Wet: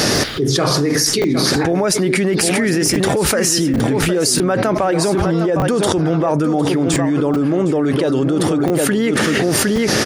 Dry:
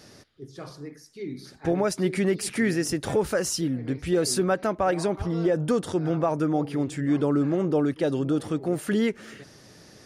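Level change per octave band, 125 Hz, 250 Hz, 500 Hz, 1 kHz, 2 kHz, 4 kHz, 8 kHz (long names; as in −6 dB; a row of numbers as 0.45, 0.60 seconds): +10.5, +10.0, +9.5, +10.5, +13.0, +17.5, +15.5 decibels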